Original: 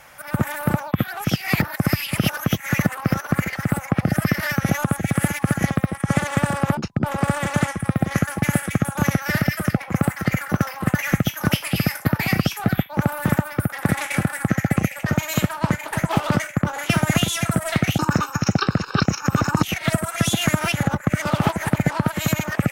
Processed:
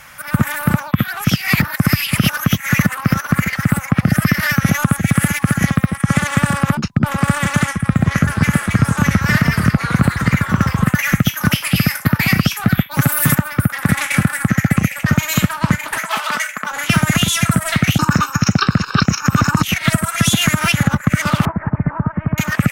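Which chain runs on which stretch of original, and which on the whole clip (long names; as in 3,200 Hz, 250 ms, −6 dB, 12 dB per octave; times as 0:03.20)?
0:07.77–0:10.84: high-shelf EQ 8,300 Hz −9.5 dB + delay with pitch and tempo change per echo 151 ms, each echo −4 semitones, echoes 2, each echo −6 dB
0:12.91–0:13.35: parametric band 13,000 Hz +14 dB 2.3 octaves + comb filter 7.3 ms, depth 76% + downward compressor 1.5 to 1, threshold −21 dBFS
0:15.97–0:16.71: high-pass filter 720 Hz + comb filter 4.6 ms, depth 38%
0:21.45–0:22.38: hard clipping −16.5 dBFS + Gaussian smoothing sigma 6.4 samples
whole clip: flat-topped bell 520 Hz −8 dB; boost into a limiter +8.5 dB; level −1 dB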